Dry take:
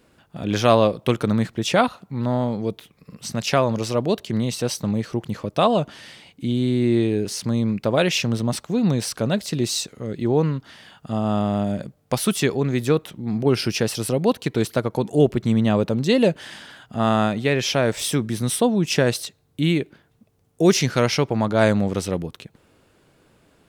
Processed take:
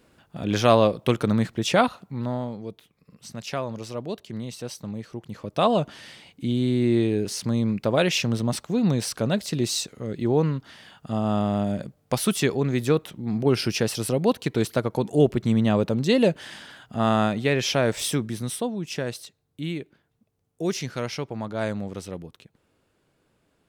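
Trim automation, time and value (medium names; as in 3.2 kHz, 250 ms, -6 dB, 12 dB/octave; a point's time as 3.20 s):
2.00 s -1.5 dB
2.63 s -10.5 dB
5.24 s -10.5 dB
5.68 s -2 dB
18.06 s -2 dB
18.77 s -10.5 dB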